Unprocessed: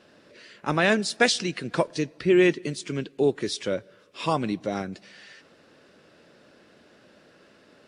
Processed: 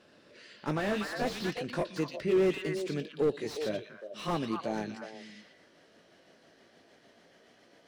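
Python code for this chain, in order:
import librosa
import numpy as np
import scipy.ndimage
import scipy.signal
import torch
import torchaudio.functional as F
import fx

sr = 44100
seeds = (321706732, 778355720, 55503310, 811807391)

y = fx.pitch_glide(x, sr, semitones=2.5, runs='starting unshifted')
y = fx.echo_stepped(y, sr, ms=120, hz=3600.0, octaves=-1.4, feedback_pct=70, wet_db=-2.5)
y = fx.slew_limit(y, sr, full_power_hz=56.0)
y = y * librosa.db_to_amplitude(-4.5)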